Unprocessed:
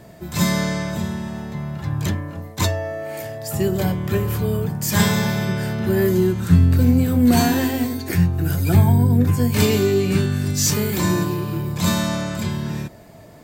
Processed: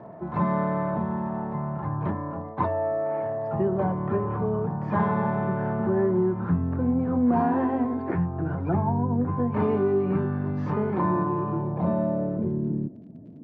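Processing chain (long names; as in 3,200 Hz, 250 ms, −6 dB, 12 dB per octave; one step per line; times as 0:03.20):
low-pass filter sweep 1,000 Hz → 250 Hz, 0:11.45–0:13.03
downward compressor 2 to 1, threshold −23 dBFS, peak gain reduction 8.5 dB
surface crackle 40 per second −49 dBFS
band-pass filter 140–2,700 Hz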